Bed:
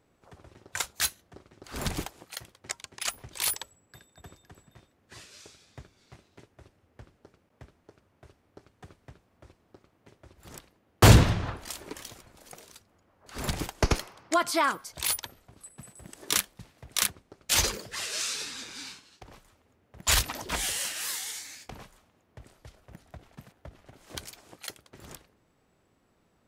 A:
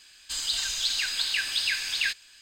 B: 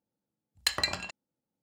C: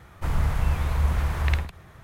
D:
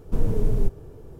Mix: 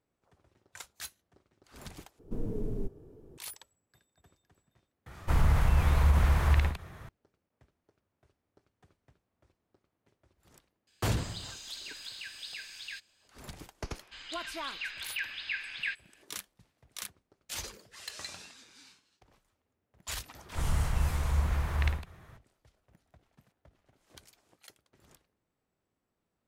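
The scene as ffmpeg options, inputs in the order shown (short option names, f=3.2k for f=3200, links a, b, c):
-filter_complex "[3:a]asplit=2[a][b];[1:a]asplit=2[c][d];[0:a]volume=-15dB[e];[4:a]equalizer=f=290:w=0.81:g=10[f];[a]alimiter=level_in=14.5dB:limit=-1dB:release=50:level=0:latency=1[g];[d]lowpass=f=2.3k:t=q:w=1.8[h];[2:a]asplit=2[i][j];[j]adelay=23,volume=-13dB[k];[i][k]amix=inputs=2:normalize=0[l];[e]asplit=2[m][n];[m]atrim=end=2.194[o];[f]atrim=end=1.19,asetpts=PTS-STARTPTS,volume=-15dB[p];[n]atrim=start=3.376[q];[g]atrim=end=2.03,asetpts=PTS-STARTPTS,volume=-14dB,afade=t=in:d=0.004:c=hsin,afade=t=out:st=2.026:d=0.004:c=hsin,adelay=5060[r];[c]atrim=end=2.41,asetpts=PTS-STARTPTS,volume=-16dB,afade=t=in:d=0.004:c=hsin,afade=t=out:st=2.406:d=0.004:c=hsin,adelay=10870[s];[h]atrim=end=2.41,asetpts=PTS-STARTPTS,volume=-10dB,afade=t=in:d=0.004:c=hsin,afade=t=out:st=2.406:d=0.004:c=hsin,adelay=13820[t];[l]atrim=end=1.62,asetpts=PTS-STARTPTS,volume=-15dB,afade=t=in:d=0.004:c=hsin,afade=t=out:st=1.616:d=0.004:c=hsin,adelay=17410[u];[b]atrim=end=2.03,asetpts=PTS-STARTPTS,volume=-5.5dB,afade=t=in:d=0.004:c=hsin,afade=t=out:st=2.026:d=0.004:c=hsin,adelay=20340[v];[o][p]acrossfade=d=0.004:c1=hsin:c2=hsin[w];[w][q]acrossfade=d=0.004:c1=hsin:c2=hsin[x];[x][r][s][t][u][v]amix=inputs=6:normalize=0"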